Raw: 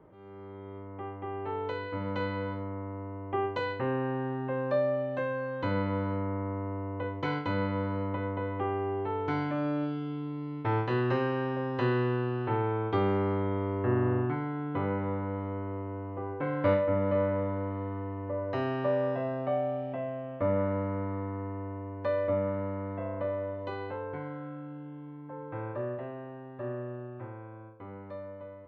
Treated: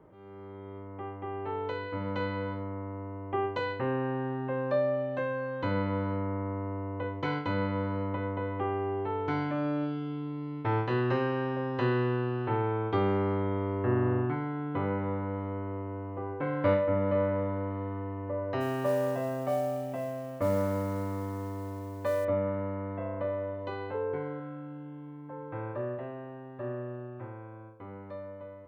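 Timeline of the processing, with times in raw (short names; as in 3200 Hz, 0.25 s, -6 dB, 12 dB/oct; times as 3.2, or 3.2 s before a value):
18.6–22.25 modulation noise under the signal 25 dB
23.94–24.4 bell 420 Hz +12 dB 0.31 oct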